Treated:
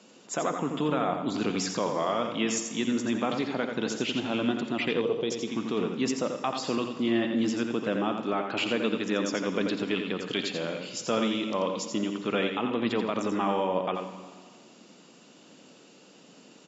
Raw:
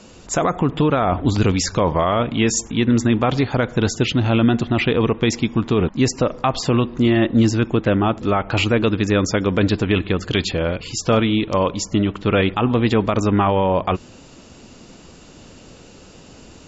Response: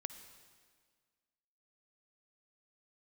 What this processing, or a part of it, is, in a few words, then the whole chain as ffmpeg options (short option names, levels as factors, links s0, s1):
PA in a hall: -filter_complex "[0:a]highpass=f=180:w=0.5412,highpass=f=180:w=1.3066,equalizer=f=3200:t=o:w=0.58:g=3,aecho=1:1:86:0.473[s0];[1:a]atrim=start_sample=2205[s1];[s0][s1]afir=irnorm=-1:irlink=0,asettb=1/sr,asplit=3[s2][s3][s4];[s2]atrim=end=5.014[s5];[s3]atrim=start=5.01:end=5.48,asetpts=PTS-STARTPTS,afade=t=in:d=0.004:c=qsin,afade=t=out:st=0.466:d=0.004:c=qsin,equalizer=f=250:t=o:w=1:g=-6,equalizer=f=500:t=o:w=1:g=6,equalizer=f=1000:t=o:w=1:g=-5,equalizer=f=2000:t=o:w=1:g=-9[s6];[s4]atrim=start=5.476[s7];[s5][s6]acrossfade=d=0.004:c1=hsin:c2=qsin[s8];[s8][s7]acrossfade=d=0.004:c1=qsin:c2=hsin,volume=0.398"